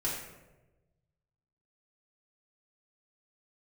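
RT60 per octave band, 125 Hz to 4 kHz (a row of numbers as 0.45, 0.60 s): 1.8, 1.2, 1.3, 0.90, 0.85, 0.60 s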